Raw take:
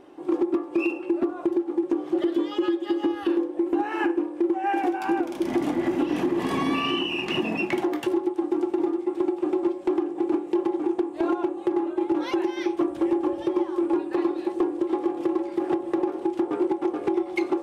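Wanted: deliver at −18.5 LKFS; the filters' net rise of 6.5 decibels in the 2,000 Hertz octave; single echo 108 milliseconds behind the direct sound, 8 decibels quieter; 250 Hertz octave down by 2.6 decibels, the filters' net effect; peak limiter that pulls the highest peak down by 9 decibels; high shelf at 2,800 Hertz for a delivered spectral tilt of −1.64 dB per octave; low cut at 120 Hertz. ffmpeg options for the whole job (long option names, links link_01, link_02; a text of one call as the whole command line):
ffmpeg -i in.wav -af "highpass=120,equalizer=frequency=250:width_type=o:gain=-4.5,equalizer=frequency=2000:width_type=o:gain=4.5,highshelf=frequency=2800:gain=8.5,alimiter=limit=-18dB:level=0:latency=1,aecho=1:1:108:0.398,volume=9.5dB" out.wav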